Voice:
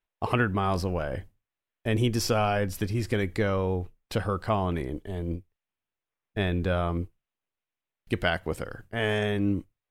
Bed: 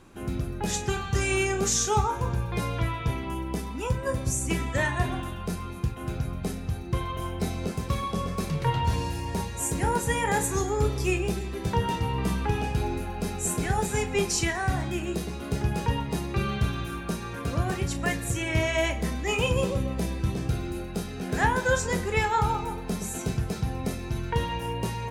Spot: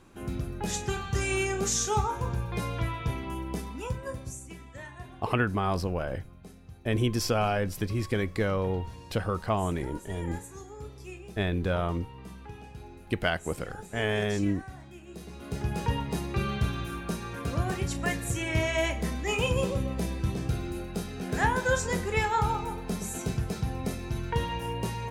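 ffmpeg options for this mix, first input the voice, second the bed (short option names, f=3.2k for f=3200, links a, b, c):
-filter_complex "[0:a]adelay=5000,volume=-1.5dB[a];[1:a]volume=12.5dB,afade=t=out:st=3.59:d=0.91:silence=0.188365,afade=t=in:st=15.06:d=0.82:silence=0.16788[b];[a][b]amix=inputs=2:normalize=0"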